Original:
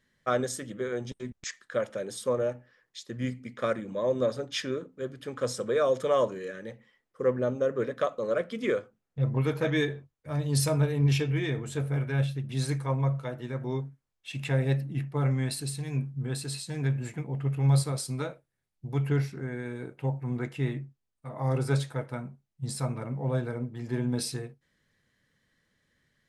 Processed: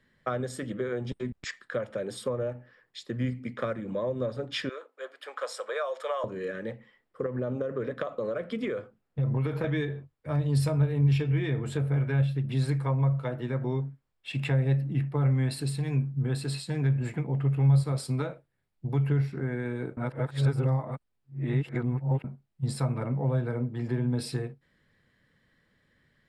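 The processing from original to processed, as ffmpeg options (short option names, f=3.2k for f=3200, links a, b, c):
-filter_complex "[0:a]asettb=1/sr,asplit=3[a][b][c];[a]atrim=end=4.694[d];[b]atrim=start=4.69:end=6.24,asetpts=PTS-STARTPTS,afade=t=in:d=0.004:c=qsin,afade=t=out:st=1.546:d=0.004:c=qsin,highpass=f=630:w=0.5412,highpass=f=630:w=1.3066[e];[c]atrim=start=6.236[f];[d][e]acrossfade=d=0.004:c1=hsin:c2=qsin[g];[g][f]acrossfade=d=0.004:c1=qsin:c2=hsin,asettb=1/sr,asplit=3[h][i][j];[h]atrim=end=7.264[k];[i]atrim=start=7.26:end=9.64,asetpts=PTS-STARTPTS,afade=t=in:d=0.004:c=qsin,afade=t=out:st=2.376:d=0.004:c=qsin,acompressor=threshold=-27dB:ratio=6:attack=3.2:release=140:knee=1:detection=peak[l];[j]atrim=start=9.636[m];[k][l]acrossfade=d=0.004:c1=hsin:c2=qsin[n];[n][m]acrossfade=d=0.004:c1=qsin:c2=hsin,asplit=3[o][p][q];[o]atrim=end=19.972[r];[p]atrim=start=19.968:end=22.242,asetpts=PTS-STARTPTS,areverse[s];[q]atrim=start=22.238[t];[r][s]acrossfade=d=0.004:c1=hsin:c2=hsin[u];[u][t]acrossfade=d=0.004:c1=hsin:c2=hsin,highshelf=f=4.8k:g=-11.5,bandreject=f=6.2k:w=5.2,acrossover=split=130[v][w];[w]acompressor=threshold=-34dB:ratio=6[x];[v][x]amix=inputs=2:normalize=0,volume=5.5dB"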